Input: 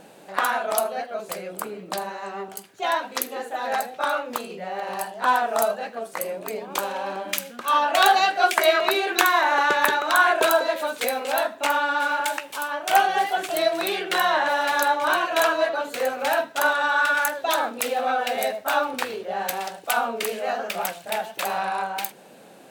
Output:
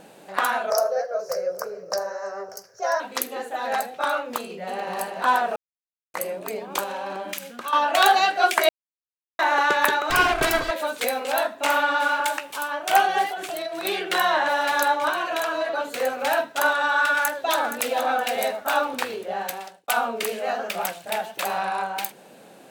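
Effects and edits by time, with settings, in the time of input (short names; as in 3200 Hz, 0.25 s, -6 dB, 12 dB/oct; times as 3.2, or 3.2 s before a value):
0.7–3 EQ curve 120 Hz 0 dB, 280 Hz -21 dB, 520 Hz +12 dB, 820 Hz -5 dB, 1600 Hz +1 dB, 2400 Hz -13 dB, 3500 Hz -21 dB, 5500 Hz +14 dB, 8200 Hz -12 dB, 14000 Hz -4 dB
4.38–4.95 echo throw 0.29 s, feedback 55%, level -5 dB
5.56–6.14 mute
6.83–7.73 compressor, threshold -26 dBFS
8.69–9.39 mute
10.1–10.71 minimum comb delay 2.6 ms
11.54–12.13 reverb throw, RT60 0.88 s, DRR 3 dB
13.28–13.85 compressor, threshold -27 dBFS
15.09–15.71 compressor, threshold -21 dBFS
17.17–17.95 echo throw 0.47 s, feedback 35%, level -9.5 dB
19.32–19.88 fade out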